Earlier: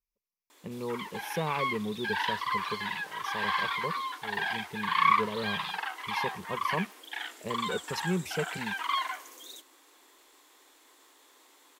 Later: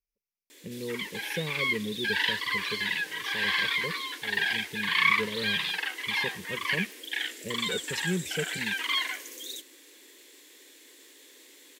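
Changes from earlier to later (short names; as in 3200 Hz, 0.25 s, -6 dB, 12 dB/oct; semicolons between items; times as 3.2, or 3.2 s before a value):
background +7.5 dB; master: add band shelf 960 Hz -15 dB 1.3 oct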